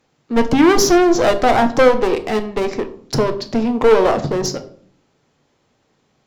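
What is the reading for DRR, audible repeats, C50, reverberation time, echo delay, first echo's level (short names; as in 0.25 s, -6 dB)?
7.5 dB, none, 14.0 dB, 0.55 s, none, none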